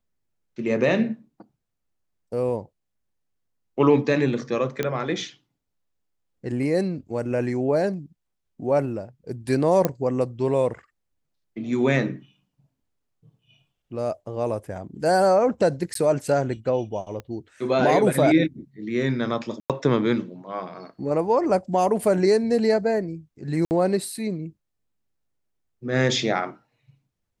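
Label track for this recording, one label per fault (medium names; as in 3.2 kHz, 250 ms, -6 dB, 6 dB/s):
4.830000	4.830000	pop -11 dBFS
9.850000	9.850000	pop -7 dBFS
15.940000	15.950000	dropout 13 ms
17.200000	17.200000	pop -22 dBFS
19.600000	19.700000	dropout 97 ms
23.650000	23.710000	dropout 59 ms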